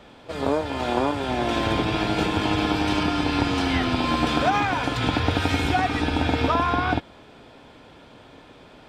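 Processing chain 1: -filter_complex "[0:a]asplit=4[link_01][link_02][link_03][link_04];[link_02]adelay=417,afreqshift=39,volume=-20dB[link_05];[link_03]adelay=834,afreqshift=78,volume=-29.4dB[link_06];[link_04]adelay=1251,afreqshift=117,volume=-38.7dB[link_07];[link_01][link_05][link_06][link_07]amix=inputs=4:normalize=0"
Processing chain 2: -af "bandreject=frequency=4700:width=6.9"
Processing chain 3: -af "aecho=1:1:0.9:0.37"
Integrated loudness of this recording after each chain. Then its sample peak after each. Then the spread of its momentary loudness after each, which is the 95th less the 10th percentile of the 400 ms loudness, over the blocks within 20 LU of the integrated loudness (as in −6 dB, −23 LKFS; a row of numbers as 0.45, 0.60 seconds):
−23.0, −23.5, −22.5 LKFS; −8.0, −8.0, −6.5 dBFS; 4, 4, 5 LU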